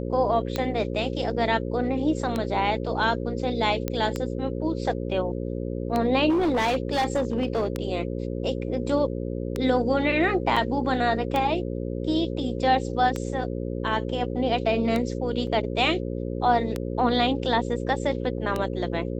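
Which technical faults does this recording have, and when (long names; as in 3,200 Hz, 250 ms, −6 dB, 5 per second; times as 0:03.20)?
mains buzz 60 Hz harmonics 9 −30 dBFS
scratch tick 33 1/3 rpm −13 dBFS
0:03.88: click −12 dBFS
0:06.29–0:07.68: clipping −19.5 dBFS
0:10.56–0:10.57: drop-out 5.6 ms
0:15.47: drop-out 2.6 ms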